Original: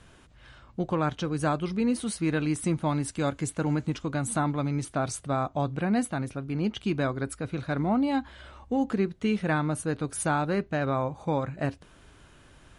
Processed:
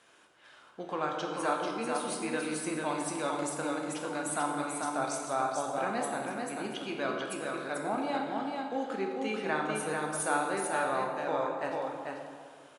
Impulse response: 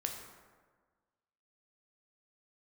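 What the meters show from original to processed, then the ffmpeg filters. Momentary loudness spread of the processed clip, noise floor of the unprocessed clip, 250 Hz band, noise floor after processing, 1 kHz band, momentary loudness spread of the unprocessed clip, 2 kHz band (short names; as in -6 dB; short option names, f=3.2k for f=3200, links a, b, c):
6 LU, -55 dBFS, -8.5 dB, -57 dBFS, +0.5 dB, 5 LU, 0.0 dB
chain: -filter_complex "[0:a]highpass=440,aecho=1:1:441:0.631[a];[1:a]atrim=start_sample=2205,asetrate=31752,aresample=44100[b];[a][b]afir=irnorm=-1:irlink=0,volume=-4.5dB"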